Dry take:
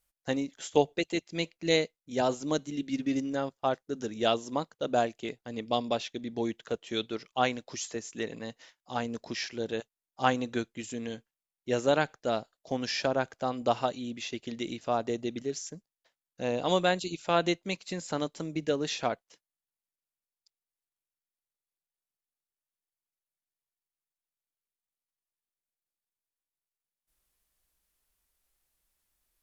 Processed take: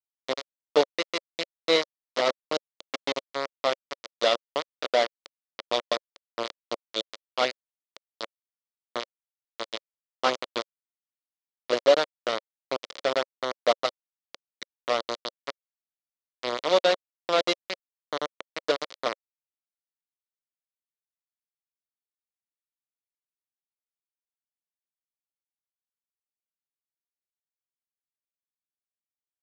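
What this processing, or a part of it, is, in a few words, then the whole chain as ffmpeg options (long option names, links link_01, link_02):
hand-held game console: -af "acrusher=bits=3:mix=0:aa=0.000001,highpass=430,equalizer=frequency=550:width_type=q:width=4:gain=5,equalizer=frequency=820:width_type=q:width=4:gain=-9,equalizer=frequency=1600:width_type=q:width=4:gain=-8,equalizer=frequency=2600:width_type=q:width=4:gain=-7,lowpass=frequency=4700:width=0.5412,lowpass=frequency=4700:width=1.3066,volume=5dB"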